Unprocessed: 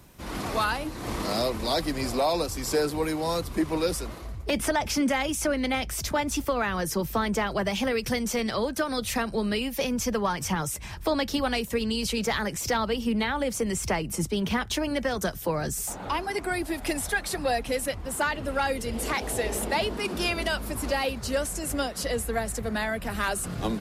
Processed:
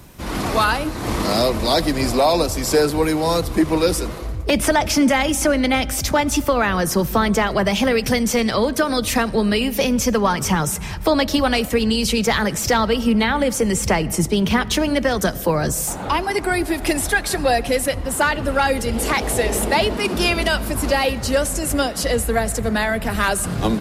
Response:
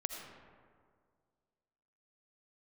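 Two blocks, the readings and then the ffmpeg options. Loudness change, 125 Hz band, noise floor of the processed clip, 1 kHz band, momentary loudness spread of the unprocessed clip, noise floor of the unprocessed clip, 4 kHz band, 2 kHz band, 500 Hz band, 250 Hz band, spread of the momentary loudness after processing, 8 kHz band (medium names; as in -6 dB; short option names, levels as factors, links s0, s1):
+9.0 dB, +10.0 dB, -28 dBFS, +8.5 dB, 4 LU, -38 dBFS, +8.5 dB, +8.5 dB, +9.0 dB, +9.5 dB, 4 LU, +8.5 dB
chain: -filter_complex "[0:a]asplit=2[s0][s1];[1:a]atrim=start_sample=2205,lowshelf=f=320:g=8[s2];[s1][s2]afir=irnorm=-1:irlink=0,volume=0.2[s3];[s0][s3]amix=inputs=2:normalize=0,volume=2.24"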